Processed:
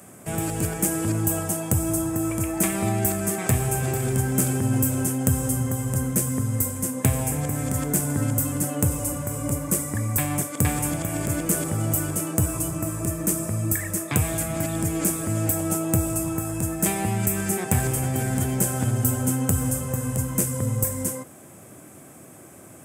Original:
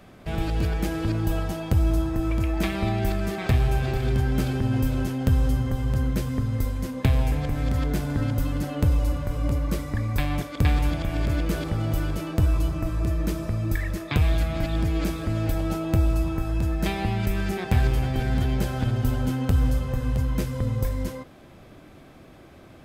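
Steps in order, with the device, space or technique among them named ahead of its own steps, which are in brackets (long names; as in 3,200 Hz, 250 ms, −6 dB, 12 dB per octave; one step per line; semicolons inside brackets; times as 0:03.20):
budget condenser microphone (high-pass filter 97 Hz 24 dB per octave; high shelf with overshoot 5,900 Hz +13.5 dB, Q 3)
level +2 dB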